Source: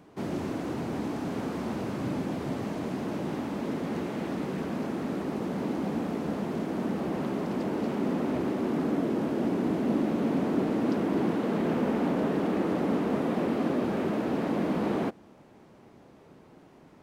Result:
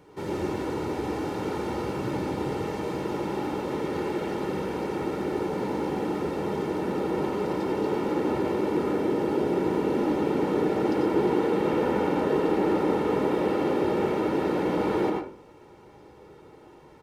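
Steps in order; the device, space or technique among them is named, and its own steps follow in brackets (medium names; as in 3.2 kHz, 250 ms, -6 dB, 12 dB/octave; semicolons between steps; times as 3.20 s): microphone above a desk (comb 2.2 ms, depth 68%; reverberation RT60 0.45 s, pre-delay 84 ms, DRR 0 dB)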